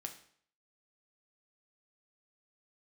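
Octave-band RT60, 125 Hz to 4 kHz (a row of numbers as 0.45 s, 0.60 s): 0.60 s, 0.55 s, 0.55 s, 0.55 s, 0.55 s, 0.55 s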